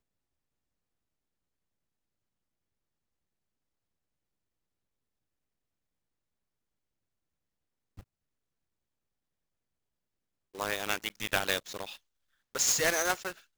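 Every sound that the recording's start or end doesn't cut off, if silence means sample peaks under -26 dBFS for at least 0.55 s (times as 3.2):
10.6–11.8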